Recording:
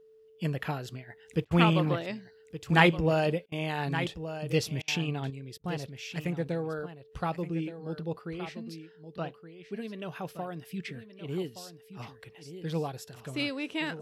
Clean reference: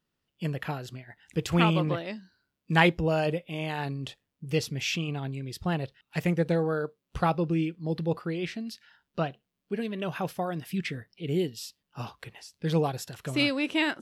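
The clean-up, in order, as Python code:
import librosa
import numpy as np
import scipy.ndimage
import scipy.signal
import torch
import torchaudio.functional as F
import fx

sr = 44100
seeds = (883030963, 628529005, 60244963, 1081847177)

y = fx.notch(x, sr, hz=440.0, q=30.0)
y = fx.fix_interpolate(y, sr, at_s=(1.45, 3.46, 4.82, 5.58), length_ms=58.0)
y = fx.fix_echo_inverse(y, sr, delay_ms=1171, level_db=-11.5)
y = fx.fix_level(y, sr, at_s=5.3, step_db=6.5)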